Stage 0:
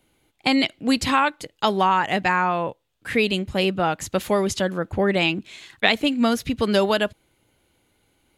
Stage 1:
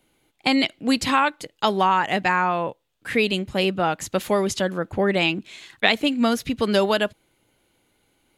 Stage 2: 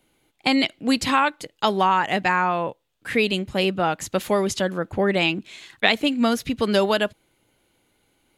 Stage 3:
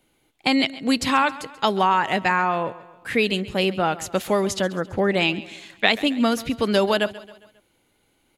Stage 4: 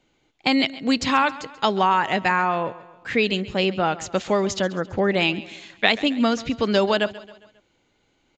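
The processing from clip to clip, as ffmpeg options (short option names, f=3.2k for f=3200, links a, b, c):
-af "equalizer=f=68:w=1.1:g=-7"
-af anull
-af "aecho=1:1:135|270|405|540:0.126|0.0617|0.0302|0.0148"
-af "aresample=16000,aresample=44100"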